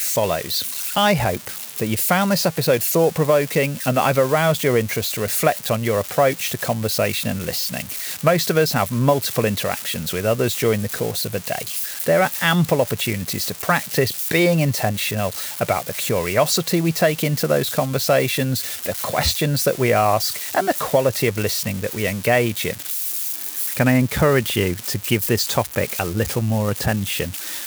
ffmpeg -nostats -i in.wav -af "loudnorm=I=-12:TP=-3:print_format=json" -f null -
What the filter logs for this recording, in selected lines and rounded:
"input_i" : "-20.1",
"input_tp" : "-3.0",
"input_lra" : "2.5",
"input_thresh" : "-30.1",